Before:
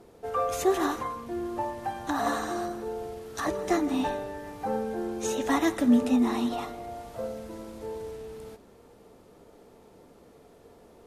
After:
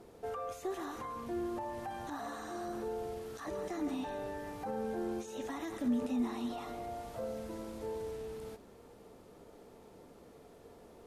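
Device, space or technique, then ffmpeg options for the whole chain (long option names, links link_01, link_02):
de-esser from a sidechain: -filter_complex "[0:a]asplit=2[link_01][link_02];[link_02]highpass=frequency=7000:poles=1,apad=whole_len=487899[link_03];[link_01][link_03]sidechaincompress=threshold=-53dB:ratio=6:attack=1.9:release=33,volume=-2dB"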